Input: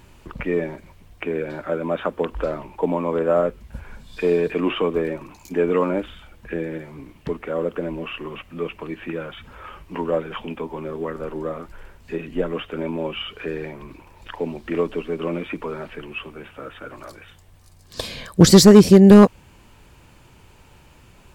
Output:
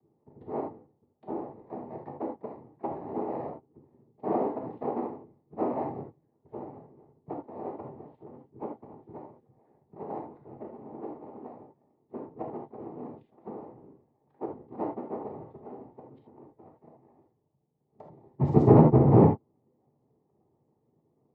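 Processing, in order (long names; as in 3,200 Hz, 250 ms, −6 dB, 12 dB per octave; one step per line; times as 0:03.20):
adaptive Wiener filter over 41 samples
pair of resonant band-passes 300 Hz, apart 0.96 octaves
cochlear-implant simulation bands 6
high-frequency loss of the air 95 metres
reverb whose tail is shaped and stops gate 100 ms flat, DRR 0.5 dB
level −8 dB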